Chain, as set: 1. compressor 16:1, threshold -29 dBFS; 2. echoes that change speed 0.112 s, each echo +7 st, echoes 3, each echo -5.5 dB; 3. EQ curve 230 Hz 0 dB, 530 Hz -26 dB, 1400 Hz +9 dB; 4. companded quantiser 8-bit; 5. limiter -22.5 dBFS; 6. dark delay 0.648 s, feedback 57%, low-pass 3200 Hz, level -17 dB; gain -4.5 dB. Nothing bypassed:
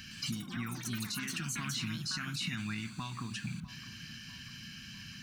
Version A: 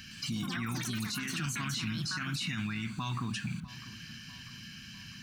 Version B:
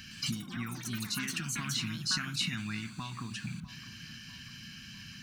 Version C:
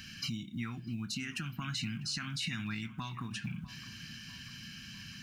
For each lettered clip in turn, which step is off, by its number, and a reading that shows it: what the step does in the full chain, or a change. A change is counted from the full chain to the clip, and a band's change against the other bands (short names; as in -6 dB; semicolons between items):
1, mean gain reduction 6.5 dB; 5, crest factor change +7.5 dB; 2, 8 kHz band -4.0 dB